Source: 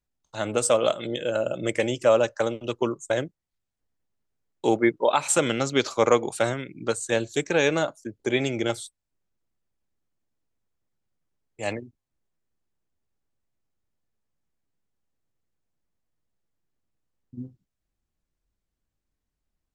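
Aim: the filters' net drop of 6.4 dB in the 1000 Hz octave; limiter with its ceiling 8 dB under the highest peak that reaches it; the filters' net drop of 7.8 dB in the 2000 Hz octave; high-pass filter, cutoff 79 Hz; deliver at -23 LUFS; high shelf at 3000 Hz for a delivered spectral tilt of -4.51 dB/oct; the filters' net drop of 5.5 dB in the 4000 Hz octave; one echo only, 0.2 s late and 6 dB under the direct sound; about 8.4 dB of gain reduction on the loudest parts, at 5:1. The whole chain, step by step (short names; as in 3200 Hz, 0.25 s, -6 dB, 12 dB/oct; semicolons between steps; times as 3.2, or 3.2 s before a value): HPF 79 Hz; bell 1000 Hz -7 dB; bell 2000 Hz -8 dB; high shelf 3000 Hz +5.5 dB; bell 4000 Hz -7.5 dB; compressor 5:1, threshold -26 dBFS; limiter -23.5 dBFS; echo 0.2 s -6 dB; gain +11 dB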